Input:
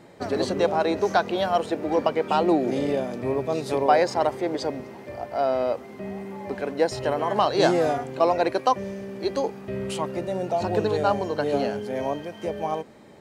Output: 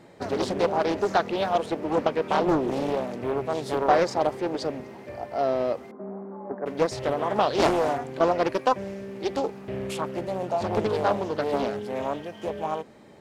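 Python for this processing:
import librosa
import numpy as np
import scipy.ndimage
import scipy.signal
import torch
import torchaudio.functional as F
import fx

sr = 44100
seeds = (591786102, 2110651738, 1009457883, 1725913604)

y = fx.ellip_bandpass(x, sr, low_hz=200.0, high_hz=1300.0, order=3, stop_db=40, at=(5.91, 6.66))
y = fx.doppler_dist(y, sr, depth_ms=0.58)
y = y * 10.0 ** (-1.5 / 20.0)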